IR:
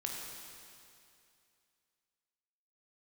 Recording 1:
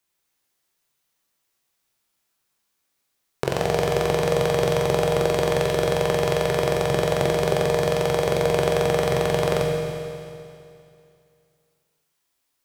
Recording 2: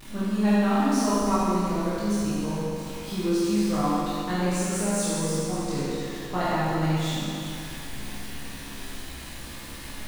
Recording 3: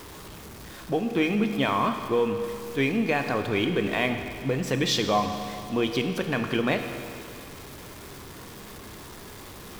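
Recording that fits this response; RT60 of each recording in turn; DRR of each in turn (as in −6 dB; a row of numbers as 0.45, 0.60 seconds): 1; 2.5, 2.5, 2.5 seconds; −1.0, −11.0, 6.0 decibels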